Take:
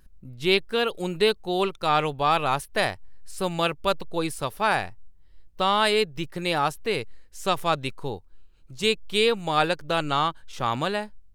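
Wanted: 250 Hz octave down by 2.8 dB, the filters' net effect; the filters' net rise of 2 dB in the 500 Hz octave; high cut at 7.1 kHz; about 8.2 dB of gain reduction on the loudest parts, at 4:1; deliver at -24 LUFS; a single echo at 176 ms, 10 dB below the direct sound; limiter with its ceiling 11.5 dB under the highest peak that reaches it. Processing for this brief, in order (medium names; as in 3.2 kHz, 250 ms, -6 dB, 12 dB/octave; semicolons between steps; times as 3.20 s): low-pass 7.1 kHz; peaking EQ 250 Hz -7 dB; peaking EQ 500 Hz +4.5 dB; compression 4:1, threshold -25 dBFS; peak limiter -23.5 dBFS; delay 176 ms -10 dB; trim +11 dB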